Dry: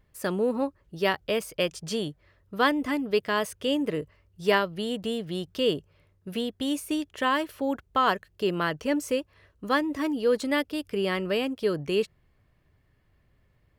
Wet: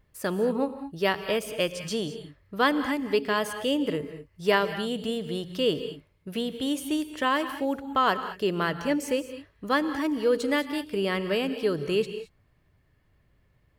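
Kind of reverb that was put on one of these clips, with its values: non-linear reverb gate 0.24 s rising, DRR 10.5 dB

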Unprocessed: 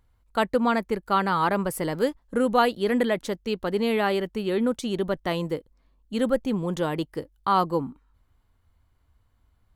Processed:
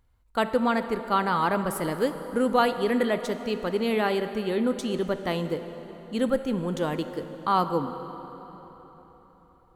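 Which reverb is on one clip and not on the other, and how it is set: plate-style reverb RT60 4.3 s, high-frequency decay 0.7×, DRR 9 dB; gain -1.5 dB

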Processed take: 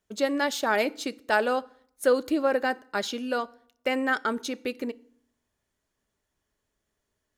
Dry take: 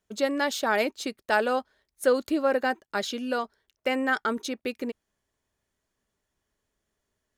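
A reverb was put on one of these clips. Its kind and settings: FDN reverb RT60 0.61 s, low-frequency decay 1.3×, high-frequency decay 0.8×, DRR 18 dB

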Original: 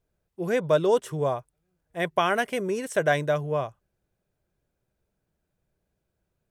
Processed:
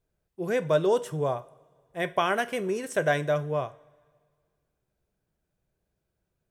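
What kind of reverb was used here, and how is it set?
two-slope reverb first 0.37 s, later 1.9 s, from -19 dB, DRR 12 dB; gain -2 dB

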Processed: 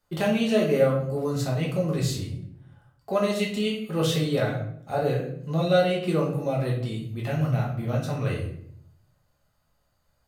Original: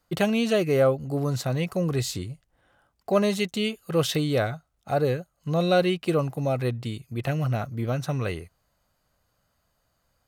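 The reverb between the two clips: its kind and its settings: shoebox room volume 120 m³, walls mixed, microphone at 1.3 m; gain -6 dB

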